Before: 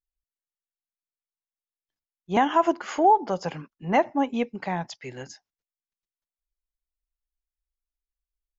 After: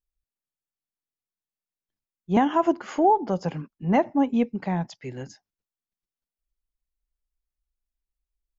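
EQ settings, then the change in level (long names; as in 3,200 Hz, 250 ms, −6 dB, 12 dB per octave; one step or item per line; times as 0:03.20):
parametric band 210 Hz +2.5 dB
low-shelf EQ 470 Hz +10 dB
−4.5 dB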